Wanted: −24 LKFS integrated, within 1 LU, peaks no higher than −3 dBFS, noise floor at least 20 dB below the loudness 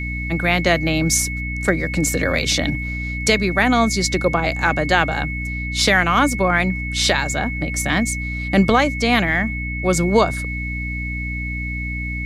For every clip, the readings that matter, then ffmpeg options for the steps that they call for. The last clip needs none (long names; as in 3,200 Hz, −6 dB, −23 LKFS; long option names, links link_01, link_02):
mains hum 60 Hz; hum harmonics up to 300 Hz; level of the hum −25 dBFS; interfering tone 2,200 Hz; level of the tone −27 dBFS; integrated loudness −19.0 LKFS; sample peak −2.5 dBFS; target loudness −24.0 LKFS
→ -af "bandreject=frequency=60:width_type=h:width=4,bandreject=frequency=120:width_type=h:width=4,bandreject=frequency=180:width_type=h:width=4,bandreject=frequency=240:width_type=h:width=4,bandreject=frequency=300:width_type=h:width=4"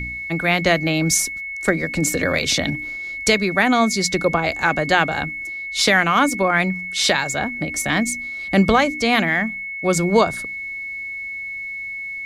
mains hum none found; interfering tone 2,200 Hz; level of the tone −27 dBFS
→ -af "bandreject=frequency=2200:width=30"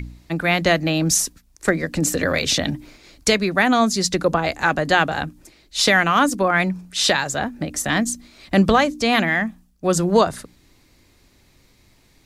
interfering tone none found; integrated loudness −19.5 LKFS; sample peak −3.5 dBFS; target loudness −24.0 LKFS
→ -af "volume=-4.5dB"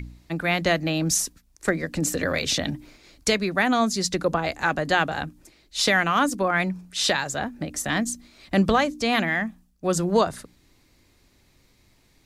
integrated loudness −24.0 LKFS; sample peak −8.0 dBFS; background noise floor −61 dBFS